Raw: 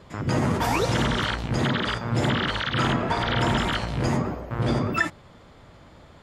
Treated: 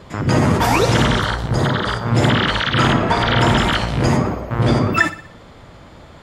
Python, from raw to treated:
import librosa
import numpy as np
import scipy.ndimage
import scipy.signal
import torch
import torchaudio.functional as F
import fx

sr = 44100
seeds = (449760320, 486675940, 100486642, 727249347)

p1 = fx.graphic_eq_15(x, sr, hz=(250, 2500, 6300), db=(-6, -11, -3), at=(1.18, 2.06))
p2 = p1 + fx.echo_feedback(p1, sr, ms=61, feedback_pct=50, wet_db=-15.0, dry=0)
y = p2 * librosa.db_to_amplitude(8.0)